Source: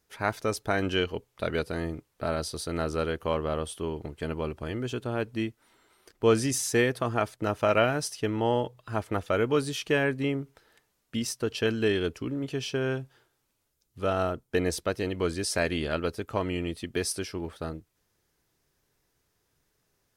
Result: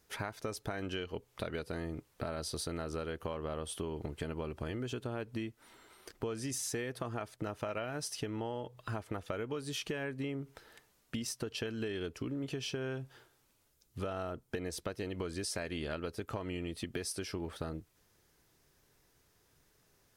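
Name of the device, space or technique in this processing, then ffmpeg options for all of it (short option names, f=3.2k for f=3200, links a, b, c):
serial compression, peaks first: -af "acompressor=threshold=-35dB:ratio=4,acompressor=threshold=-41dB:ratio=2.5,volume=4dB"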